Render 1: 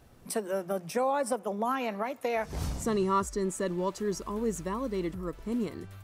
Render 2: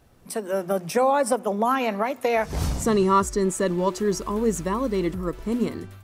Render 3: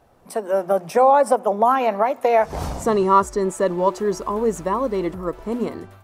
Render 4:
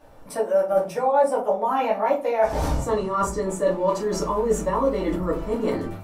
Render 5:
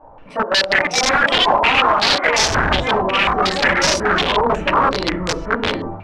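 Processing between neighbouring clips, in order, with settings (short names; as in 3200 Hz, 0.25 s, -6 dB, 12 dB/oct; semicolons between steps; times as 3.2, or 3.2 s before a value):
de-hum 121.7 Hz, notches 3; AGC gain up to 8 dB
bell 750 Hz +12 dB 1.9 oct; gain -4 dB
reverse; compressor 6:1, threshold -26 dBFS, peak gain reduction 15 dB; reverse; shoebox room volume 130 m³, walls furnished, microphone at 2.4 m
wrapped overs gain 16.5 dB; echoes that change speed 0.55 s, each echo +5 st, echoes 2; stepped low-pass 5.5 Hz 940–5700 Hz; gain +2.5 dB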